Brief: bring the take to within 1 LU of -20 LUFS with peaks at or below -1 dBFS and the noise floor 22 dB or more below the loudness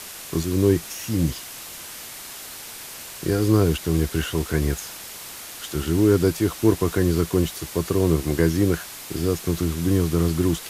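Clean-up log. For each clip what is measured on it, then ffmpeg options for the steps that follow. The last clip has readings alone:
noise floor -38 dBFS; noise floor target -45 dBFS; loudness -22.5 LUFS; peak level -5.0 dBFS; loudness target -20.0 LUFS
-> -af "afftdn=nr=7:nf=-38"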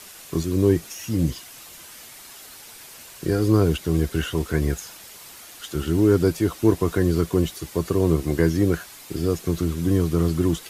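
noise floor -44 dBFS; noise floor target -45 dBFS
-> -af "afftdn=nr=6:nf=-44"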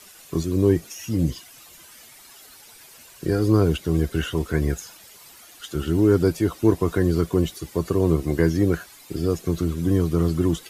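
noise floor -48 dBFS; loudness -22.5 LUFS; peak level -5.5 dBFS; loudness target -20.0 LUFS
-> -af "volume=1.33"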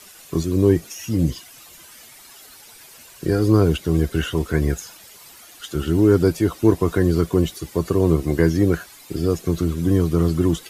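loudness -20.5 LUFS; peak level -3.0 dBFS; noise floor -45 dBFS

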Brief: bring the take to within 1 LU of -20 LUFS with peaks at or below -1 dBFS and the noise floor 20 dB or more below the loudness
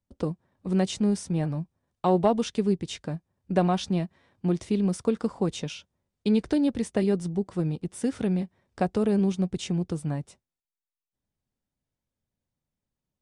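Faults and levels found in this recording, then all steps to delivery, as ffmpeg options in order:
loudness -27.5 LUFS; peak level -10.5 dBFS; loudness target -20.0 LUFS
-> -af "volume=2.37"

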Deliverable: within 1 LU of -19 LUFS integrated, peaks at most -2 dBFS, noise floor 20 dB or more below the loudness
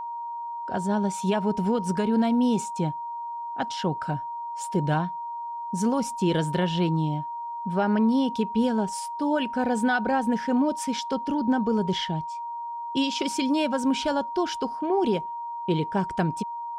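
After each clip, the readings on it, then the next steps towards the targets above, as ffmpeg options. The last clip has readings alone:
steady tone 940 Hz; tone level -31 dBFS; loudness -26.5 LUFS; peak level -13.5 dBFS; loudness target -19.0 LUFS
-> -af "bandreject=f=940:w=30"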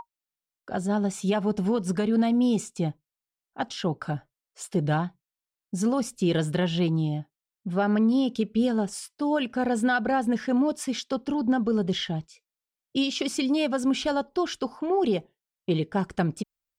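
steady tone not found; loudness -26.5 LUFS; peak level -14.5 dBFS; loudness target -19.0 LUFS
-> -af "volume=2.37"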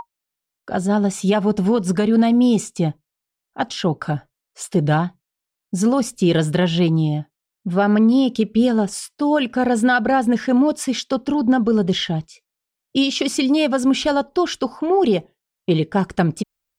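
loudness -19.0 LUFS; peak level -7.0 dBFS; noise floor -84 dBFS

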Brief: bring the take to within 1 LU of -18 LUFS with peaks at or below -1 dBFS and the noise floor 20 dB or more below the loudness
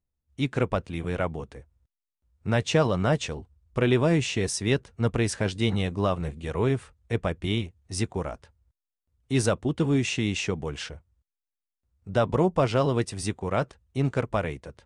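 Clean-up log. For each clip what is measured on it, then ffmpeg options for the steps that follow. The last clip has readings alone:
loudness -27.0 LUFS; peak level -10.5 dBFS; loudness target -18.0 LUFS
-> -af "volume=2.82"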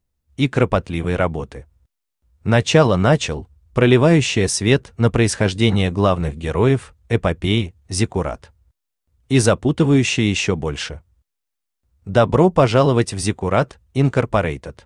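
loudness -18.0 LUFS; peak level -1.5 dBFS; noise floor -79 dBFS

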